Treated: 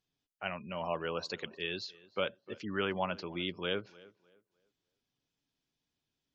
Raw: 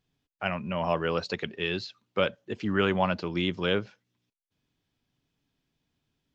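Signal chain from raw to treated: spectral gate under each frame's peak -30 dB strong; tone controls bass -5 dB, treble +8 dB; tape echo 303 ms, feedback 30%, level -20 dB, low-pass 2.5 kHz; trim -7.5 dB

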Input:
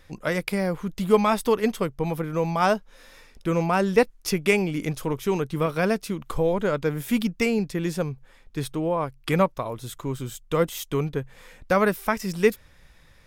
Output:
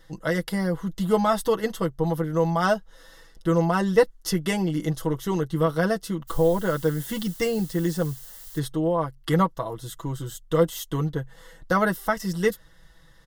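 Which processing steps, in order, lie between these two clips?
comb 6.1 ms, depth 73%; 6.27–8.58 s: added noise blue -42 dBFS; Butterworth band-stop 2.4 kHz, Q 3.7; trim -2 dB

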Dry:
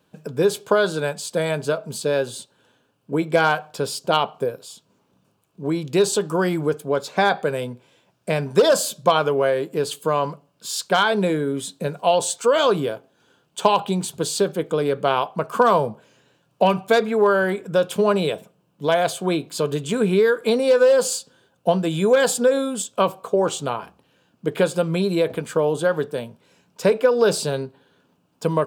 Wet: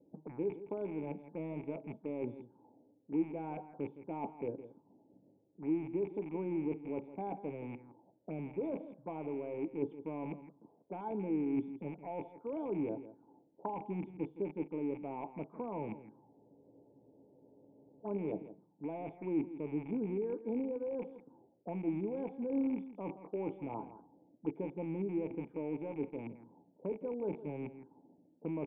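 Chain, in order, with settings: rattle on loud lows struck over -34 dBFS, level -8 dBFS; reverse; compression 16:1, threshold -25 dBFS, peak gain reduction 16.5 dB; reverse; cascade formant filter u; on a send: delay 165 ms -14 dB; on the sum: spectral freeze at 16.24 s, 1.82 s; touch-sensitive low-pass 520–2900 Hz up, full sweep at -45.5 dBFS; trim +5 dB

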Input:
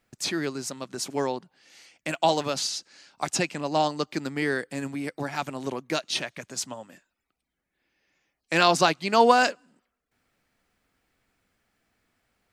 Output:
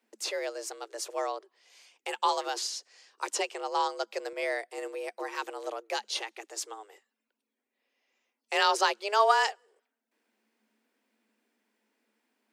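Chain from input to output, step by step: frequency shift +210 Hz; peaking EQ 220 Hz +9.5 dB 0.24 oct; 4.33–4.78 s: three bands expanded up and down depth 40%; trim -5 dB

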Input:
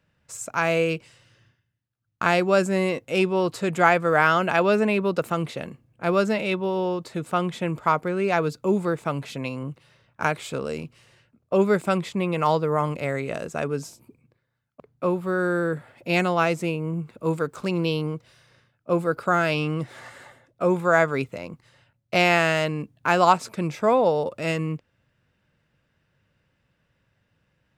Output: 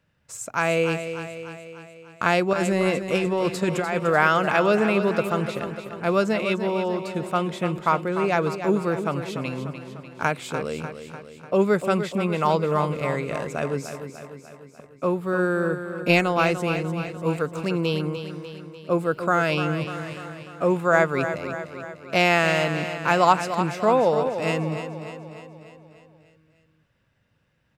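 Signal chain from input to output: 2.53–4.00 s: compressor with a negative ratio -23 dBFS, ratio -1; 15.30–16.34 s: transient shaper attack +8 dB, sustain -3 dB; feedback delay 297 ms, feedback 57%, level -9.5 dB

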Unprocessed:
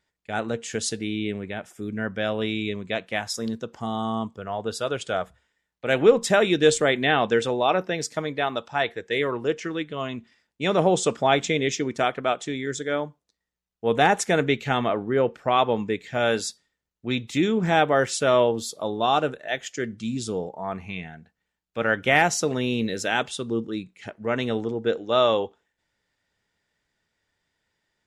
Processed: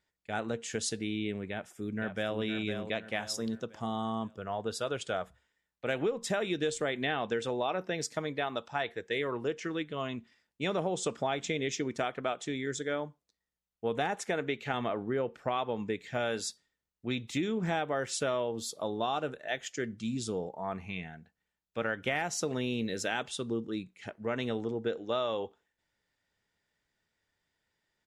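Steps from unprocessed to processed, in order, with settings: 14.15–14.74 s: tone controls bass -6 dB, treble -5 dB; compression 6:1, threshold -23 dBFS, peak gain reduction 13 dB; 1.50–2.38 s: echo throw 510 ms, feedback 40%, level -7.5 dB; trim -5 dB

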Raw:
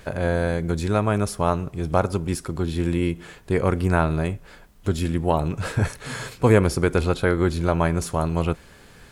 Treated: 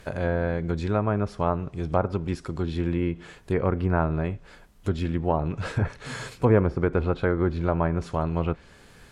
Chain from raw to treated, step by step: low-pass that closes with the level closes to 1.5 kHz, closed at -15.5 dBFS; trim -3 dB

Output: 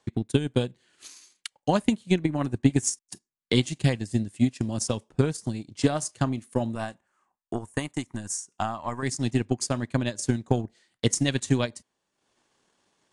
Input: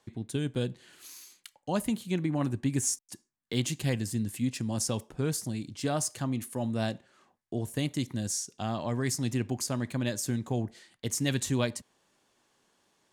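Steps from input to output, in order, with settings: transient shaper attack +12 dB, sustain -9 dB; 6.75–9.03 s: graphic EQ 125/250/500/1000/4000/8000 Hz -8/-4/-8/+7/-12/+4 dB; AAC 64 kbps 22.05 kHz

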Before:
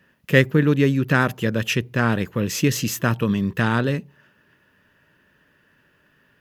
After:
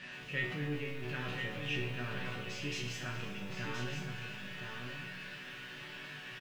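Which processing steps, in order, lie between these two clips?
jump at every zero crossing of -21 dBFS; low-pass 4.6 kHz 12 dB/octave; peaking EQ 2.6 kHz +10.5 dB 0.88 oct; transient shaper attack 0 dB, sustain +8 dB; chord resonator B2 minor, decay 0.45 s; delay 1021 ms -6.5 dB; bit-crushed delay 120 ms, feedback 80%, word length 8-bit, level -13 dB; trim -8.5 dB

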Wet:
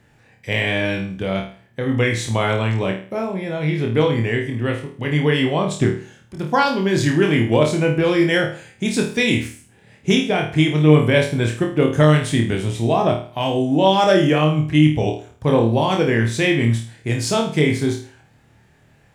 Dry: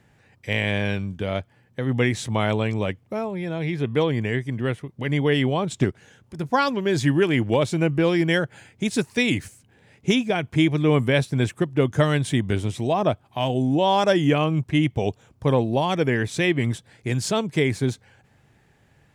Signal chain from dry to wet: flutter echo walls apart 4.5 m, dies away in 0.42 s; trim +2 dB

